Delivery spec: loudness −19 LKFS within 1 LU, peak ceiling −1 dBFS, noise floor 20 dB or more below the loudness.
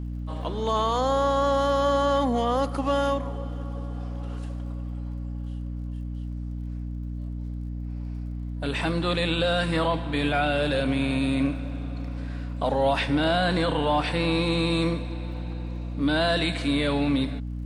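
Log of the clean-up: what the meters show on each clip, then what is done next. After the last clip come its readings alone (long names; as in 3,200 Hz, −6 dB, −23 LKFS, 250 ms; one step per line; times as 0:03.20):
crackle rate 40 per second; mains hum 60 Hz; hum harmonics up to 300 Hz; level of the hum −30 dBFS; integrated loudness −26.5 LKFS; sample peak −12.0 dBFS; target loudness −19.0 LKFS
→ click removal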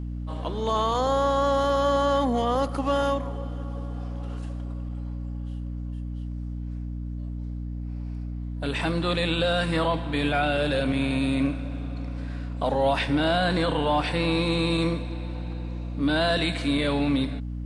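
crackle rate 0.057 per second; mains hum 60 Hz; hum harmonics up to 300 Hz; level of the hum −30 dBFS
→ mains-hum notches 60/120/180/240/300 Hz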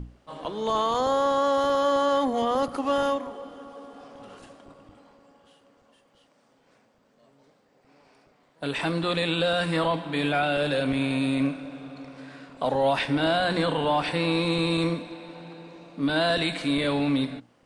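mains hum none found; integrated loudness −25.0 LKFS; sample peak −12.0 dBFS; target loudness −19.0 LKFS
→ level +6 dB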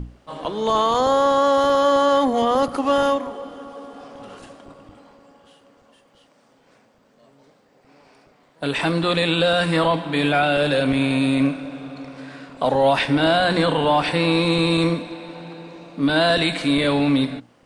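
integrated loudness −19.0 LKFS; sample peak −6.0 dBFS; background noise floor −58 dBFS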